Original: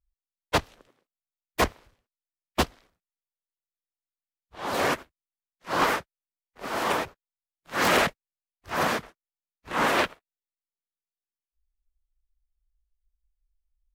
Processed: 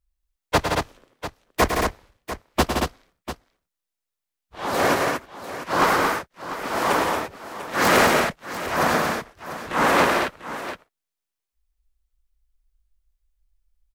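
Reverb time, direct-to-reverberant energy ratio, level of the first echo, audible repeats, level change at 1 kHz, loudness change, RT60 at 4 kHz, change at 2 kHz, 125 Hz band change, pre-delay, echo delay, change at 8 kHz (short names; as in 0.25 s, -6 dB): none, none, -7.5 dB, 4, +7.0 dB, +5.0 dB, none, +6.0 dB, +7.0 dB, none, 0.106 s, +6.5 dB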